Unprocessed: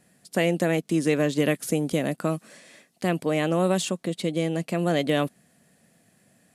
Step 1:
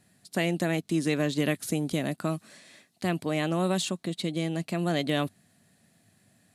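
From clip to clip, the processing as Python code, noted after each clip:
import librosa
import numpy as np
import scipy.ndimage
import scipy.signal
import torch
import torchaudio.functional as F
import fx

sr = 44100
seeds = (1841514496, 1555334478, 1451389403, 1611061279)

y = fx.graphic_eq_31(x, sr, hz=(100, 500, 4000), db=(11, -7, 6))
y = F.gain(torch.from_numpy(y), -3.0).numpy()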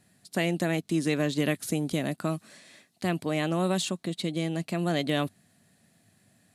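y = x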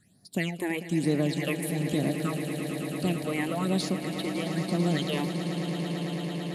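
y = fx.phaser_stages(x, sr, stages=8, low_hz=170.0, high_hz=2700.0, hz=1.1, feedback_pct=45)
y = fx.echo_swell(y, sr, ms=111, loudest=8, wet_db=-13.0)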